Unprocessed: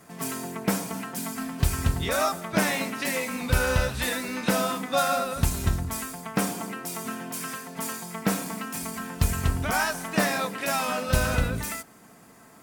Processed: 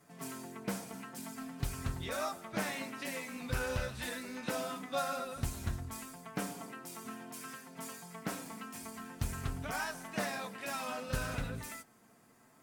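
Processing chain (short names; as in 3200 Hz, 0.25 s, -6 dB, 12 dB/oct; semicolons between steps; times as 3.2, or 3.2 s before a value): flange 0.62 Hz, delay 6.9 ms, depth 2 ms, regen -37%; Doppler distortion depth 0.3 ms; gain -8 dB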